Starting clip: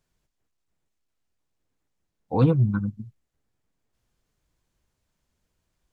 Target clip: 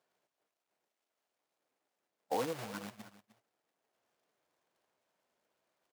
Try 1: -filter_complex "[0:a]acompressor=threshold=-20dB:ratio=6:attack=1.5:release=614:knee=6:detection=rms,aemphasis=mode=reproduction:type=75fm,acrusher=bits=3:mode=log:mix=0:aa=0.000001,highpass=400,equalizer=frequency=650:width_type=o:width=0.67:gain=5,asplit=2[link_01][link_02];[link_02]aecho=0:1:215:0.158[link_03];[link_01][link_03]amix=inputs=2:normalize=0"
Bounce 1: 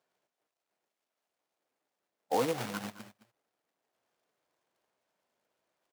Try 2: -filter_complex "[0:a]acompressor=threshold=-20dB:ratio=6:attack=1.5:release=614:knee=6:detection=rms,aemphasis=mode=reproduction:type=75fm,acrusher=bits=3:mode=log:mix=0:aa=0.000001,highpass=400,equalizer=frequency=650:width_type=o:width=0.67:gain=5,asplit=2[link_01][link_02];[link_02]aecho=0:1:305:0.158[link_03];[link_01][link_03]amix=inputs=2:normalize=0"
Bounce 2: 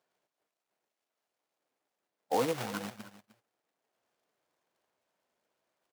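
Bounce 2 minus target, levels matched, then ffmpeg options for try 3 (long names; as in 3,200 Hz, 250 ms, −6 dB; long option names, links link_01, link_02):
downward compressor: peak gain reduction −6 dB
-filter_complex "[0:a]acompressor=threshold=-27dB:ratio=6:attack=1.5:release=614:knee=6:detection=rms,aemphasis=mode=reproduction:type=75fm,acrusher=bits=3:mode=log:mix=0:aa=0.000001,highpass=400,equalizer=frequency=650:width_type=o:width=0.67:gain=5,asplit=2[link_01][link_02];[link_02]aecho=0:1:305:0.158[link_03];[link_01][link_03]amix=inputs=2:normalize=0"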